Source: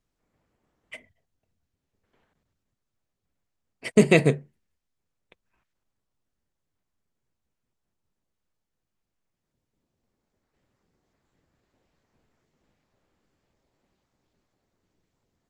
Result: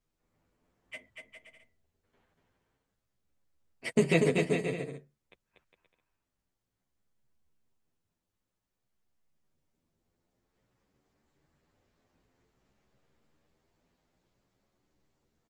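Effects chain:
downward compressor 5 to 1, threshold −17 dBFS, peak gain reduction 7 dB
on a send: bouncing-ball delay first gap 240 ms, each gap 0.7×, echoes 5
on the sum: barber-pole flanger 10.1 ms +0.52 Hz

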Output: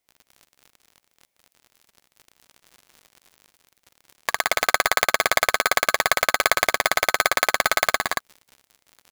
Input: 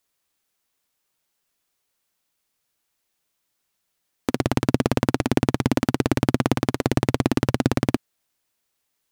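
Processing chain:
parametric band 740 Hz +11 dB 1.1 octaves
surface crackle 39 per second −29 dBFS
on a send: loudspeakers that aren't time-aligned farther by 62 metres −10 dB, 78 metres −3 dB
on the sum: ring modulator with a square carrier 1,400 Hz
level −4.5 dB

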